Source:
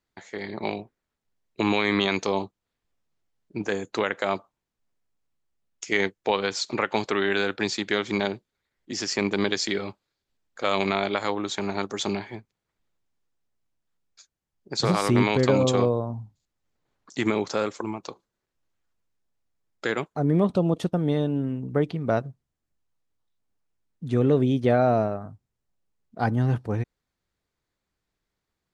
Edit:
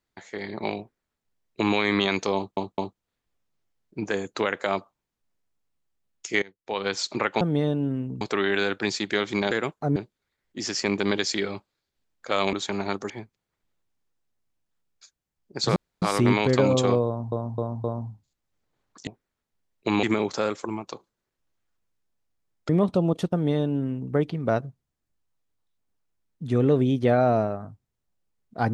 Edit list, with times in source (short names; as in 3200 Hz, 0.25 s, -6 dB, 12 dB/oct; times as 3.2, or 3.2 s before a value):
0.8–1.76 copy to 17.19
2.36 stutter 0.21 s, 3 plays
6–6.47 fade in quadratic, from -23.5 dB
10.86–11.42 cut
11.99–12.26 cut
14.92 insert room tone 0.26 s
15.96–16.22 loop, 4 plays
19.85–20.3 move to 8.29
20.94–21.74 copy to 6.99